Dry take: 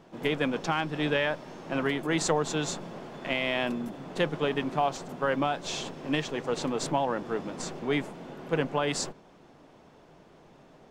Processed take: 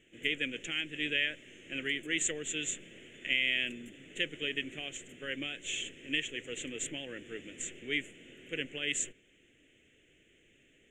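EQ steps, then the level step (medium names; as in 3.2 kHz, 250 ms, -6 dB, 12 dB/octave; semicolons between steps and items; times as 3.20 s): FFT filter 110 Hz 0 dB, 160 Hz -10 dB, 310 Hz -1 dB, 500 Hz -5 dB, 960 Hz -30 dB, 1.9 kHz +9 dB, 3.1 kHz +13 dB, 4.8 kHz -23 dB, 7 kHz +13 dB, 12 kHz -3 dB; -8.5 dB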